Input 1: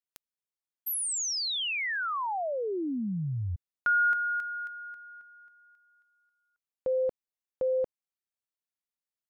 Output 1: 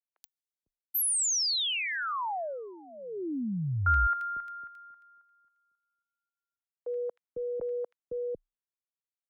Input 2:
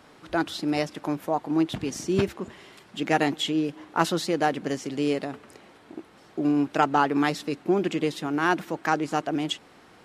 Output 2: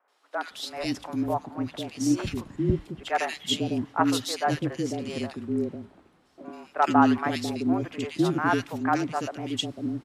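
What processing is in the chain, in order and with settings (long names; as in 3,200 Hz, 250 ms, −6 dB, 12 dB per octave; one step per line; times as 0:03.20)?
three-band delay without the direct sound mids, highs, lows 80/500 ms, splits 510/2,000 Hz
frequency shifter −31 Hz
multiband upward and downward expander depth 40%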